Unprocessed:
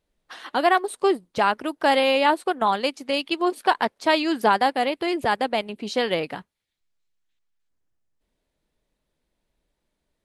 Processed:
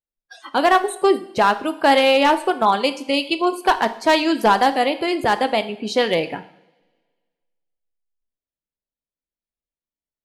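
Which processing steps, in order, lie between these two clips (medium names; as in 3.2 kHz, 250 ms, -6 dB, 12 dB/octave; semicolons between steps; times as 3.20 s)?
spectral noise reduction 27 dB; hard clipper -12 dBFS, distortion -20 dB; reverberation, pre-delay 3 ms, DRR 10 dB; trim +4 dB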